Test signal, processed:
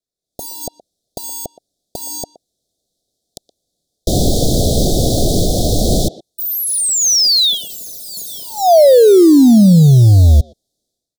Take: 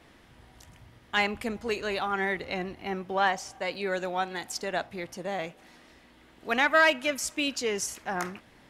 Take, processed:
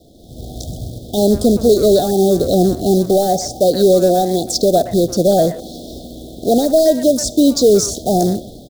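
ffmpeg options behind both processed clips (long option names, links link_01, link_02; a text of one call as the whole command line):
ffmpeg -i in.wav -filter_complex "[0:a]lowpass=11000,highshelf=frequency=5300:gain=-8.5,acrossover=split=1100|5000[link_01][link_02][link_03];[link_01]acompressor=threshold=-27dB:ratio=4[link_04];[link_02]acompressor=threshold=-44dB:ratio=4[link_05];[link_03]acompressor=threshold=-46dB:ratio=4[link_06];[link_04][link_05][link_06]amix=inputs=3:normalize=0,asplit=2[link_07][link_08];[link_08]alimiter=level_in=4.5dB:limit=-24dB:level=0:latency=1:release=201,volume=-4.5dB,volume=2dB[link_09];[link_07][link_09]amix=inputs=2:normalize=0,dynaudnorm=framelen=140:gausssize=5:maxgain=16.5dB,acrusher=bits=3:mode=log:mix=0:aa=0.000001,asoftclip=type=tanh:threshold=-5.5dB,asuperstop=centerf=1600:order=20:qfactor=0.58,asplit=2[link_10][link_11];[link_11]adelay=120,highpass=300,lowpass=3400,asoftclip=type=hard:threshold=-15.5dB,volume=-15dB[link_12];[link_10][link_12]amix=inputs=2:normalize=0,volume=3.5dB" out.wav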